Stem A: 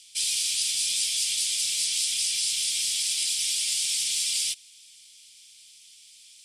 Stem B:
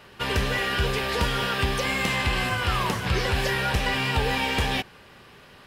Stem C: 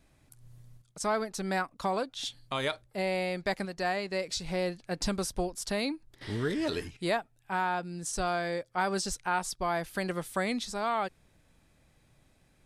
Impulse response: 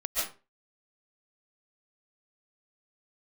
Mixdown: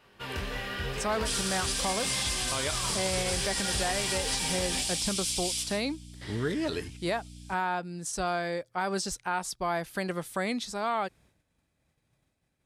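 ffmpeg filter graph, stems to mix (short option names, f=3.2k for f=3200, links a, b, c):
-filter_complex "[0:a]aeval=exprs='val(0)+0.0126*(sin(2*PI*60*n/s)+sin(2*PI*2*60*n/s)/2+sin(2*PI*3*60*n/s)/3+sin(2*PI*4*60*n/s)/4+sin(2*PI*5*60*n/s)/5)':c=same,adelay=1100,volume=-7.5dB,asplit=2[a][b];[b]volume=-12dB[c];[1:a]flanger=delay=19:depth=7.6:speed=0.83,volume=-9dB,asplit=2[d][e];[e]volume=-12.5dB[f];[2:a]highpass=41,agate=range=-33dB:threshold=-57dB:ratio=3:detection=peak,volume=0.5dB[g];[3:a]atrim=start_sample=2205[h];[c][f]amix=inputs=2:normalize=0[i];[i][h]afir=irnorm=-1:irlink=0[j];[a][d][g][j]amix=inputs=4:normalize=0,alimiter=limit=-19dB:level=0:latency=1:release=84"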